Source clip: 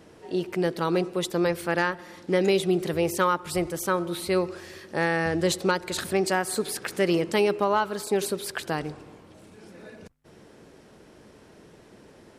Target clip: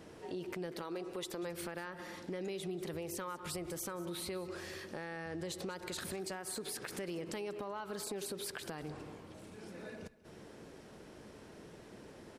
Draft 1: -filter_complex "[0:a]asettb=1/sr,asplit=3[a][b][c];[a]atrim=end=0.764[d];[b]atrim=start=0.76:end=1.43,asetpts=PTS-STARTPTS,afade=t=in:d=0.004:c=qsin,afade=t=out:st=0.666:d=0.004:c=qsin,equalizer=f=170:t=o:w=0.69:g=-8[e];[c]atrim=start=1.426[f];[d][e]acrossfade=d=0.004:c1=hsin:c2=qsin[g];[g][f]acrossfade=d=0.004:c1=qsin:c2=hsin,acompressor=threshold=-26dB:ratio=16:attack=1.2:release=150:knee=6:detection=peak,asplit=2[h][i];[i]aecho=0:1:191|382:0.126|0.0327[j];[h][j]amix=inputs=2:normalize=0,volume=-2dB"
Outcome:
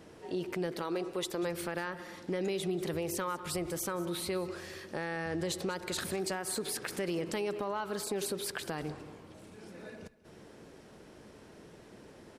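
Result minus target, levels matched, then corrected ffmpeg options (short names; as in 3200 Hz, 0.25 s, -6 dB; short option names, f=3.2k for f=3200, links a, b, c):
compressor: peak gain reduction -7 dB
-filter_complex "[0:a]asettb=1/sr,asplit=3[a][b][c];[a]atrim=end=0.764[d];[b]atrim=start=0.76:end=1.43,asetpts=PTS-STARTPTS,afade=t=in:d=0.004:c=qsin,afade=t=out:st=0.666:d=0.004:c=qsin,equalizer=f=170:t=o:w=0.69:g=-8[e];[c]atrim=start=1.426[f];[d][e]acrossfade=d=0.004:c1=hsin:c2=qsin[g];[g][f]acrossfade=d=0.004:c1=qsin:c2=hsin,acompressor=threshold=-33.5dB:ratio=16:attack=1.2:release=150:knee=6:detection=peak,asplit=2[h][i];[i]aecho=0:1:191|382:0.126|0.0327[j];[h][j]amix=inputs=2:normalize=0,volume=-2dB"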